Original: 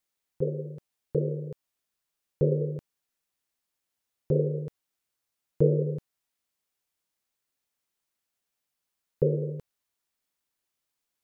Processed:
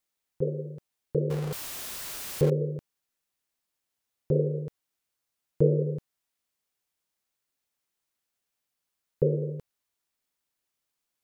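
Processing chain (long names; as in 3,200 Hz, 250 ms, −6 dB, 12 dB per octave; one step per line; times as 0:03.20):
0:01.30–0:02.50: converter with a step at zero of −31 dBFS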